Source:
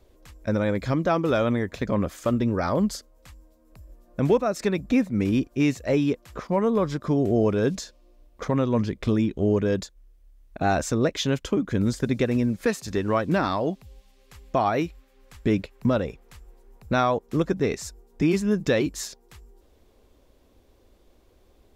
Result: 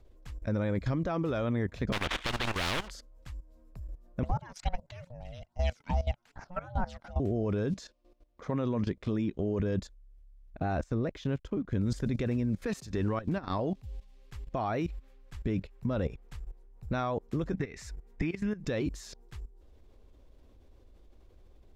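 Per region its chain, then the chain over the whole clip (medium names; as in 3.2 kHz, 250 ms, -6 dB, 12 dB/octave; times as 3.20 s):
1.92–2.90 s: steep low-pass 3.7 kHz 72 dB/octave + waveshaping leveller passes 2 + spectrum-flattening compressor 10:1
4.23–7.20 s: frequency weighting A + phase shifter stages 12, 2.4 Hz, lowest notch 420–3200 Hz + ring modulator 360 Hz
7.73–9.60 s: high-pass 180 Hz 6 dB/octave + treble shelf 11 kHz -4.5 dB
10.59–11.73 s: treble shelf 3 kHz -7 dB + hysteresis with a dead band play -49 dBFS + upward expansion, over -34 dBFS
13.08–13.59 s: band-stop 650 Hz, Q 20 + compression 16:1, threshold -25 dBFS
17.53–18.63 s: peaking EQ 2 kHz +11 dB 0.95 oct + compression 12:1, threshold -28 dBFS
whole clip: treble shelf 8.8 kHz -10 dB; level held to a coarse grid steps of 16 dB; bass shelf 110 Hz +11.5 dB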